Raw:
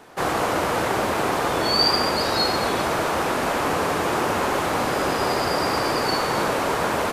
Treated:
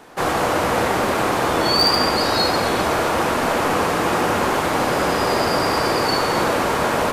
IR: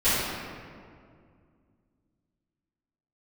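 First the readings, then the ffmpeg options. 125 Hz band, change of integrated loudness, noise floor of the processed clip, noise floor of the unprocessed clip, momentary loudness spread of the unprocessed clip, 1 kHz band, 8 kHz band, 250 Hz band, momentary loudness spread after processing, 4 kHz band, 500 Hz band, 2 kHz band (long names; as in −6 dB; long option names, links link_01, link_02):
+4.0 dB, +3.0 dB, −21 dBFS, −24 dBFS, 4 LU, +3.0 dB, +3.0 dB, +4.0 dB, 3 LU, +2.5 dB, +3.5 dB, +3.0 dB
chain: -filter_complex "[0:a]volume=13dB,asoftclip=hard,volume=-13dB,asplit=2[link_01][link_02];[1:a]atrim=start_sample=2205[link_03];[link_02][link_03]afir=irnorm=-1:irlink=0,volume=-23dB[link_04];[link_01][link_04]amix=inputs=2:normalize=0,volume=2dB"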